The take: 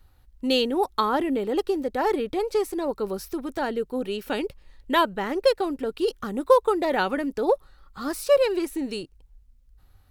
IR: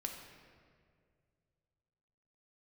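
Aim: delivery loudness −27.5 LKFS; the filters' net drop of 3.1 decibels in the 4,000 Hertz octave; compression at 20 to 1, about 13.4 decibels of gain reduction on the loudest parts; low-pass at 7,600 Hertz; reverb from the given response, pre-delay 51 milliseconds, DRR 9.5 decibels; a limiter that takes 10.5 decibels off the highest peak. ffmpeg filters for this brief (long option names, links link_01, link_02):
-filter_complex "[0:a]lowpass=7600,equalizer=frequency=4000:width_type=o:gain=-4,acompressor=threshold=-26dB:ratio=20,alimiter=level_in=1.5dB:limit=-24dB:level=0:latency=1,volume=-1.5dB,asplit=2[link_01][link_02];[1:a]atrim=start_sample=2205,adelay=51[link_03];[link_02][link_03]afir=irnorm=-1:irlink=0,volume=-8.5dB[link_04];[link_01][link_04]amix=inputs=2:normalize=0,volume=6.5dB"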